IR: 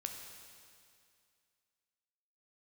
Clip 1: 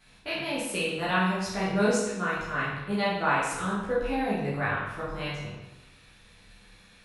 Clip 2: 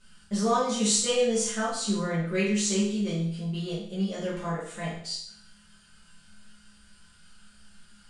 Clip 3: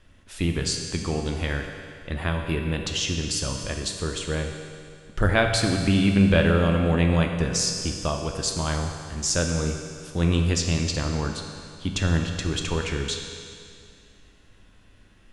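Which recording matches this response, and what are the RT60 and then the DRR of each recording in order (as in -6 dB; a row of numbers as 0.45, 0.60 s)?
3; 1.0, 0.65, 2.3 s; -9.5, -10.5, 3.0 dB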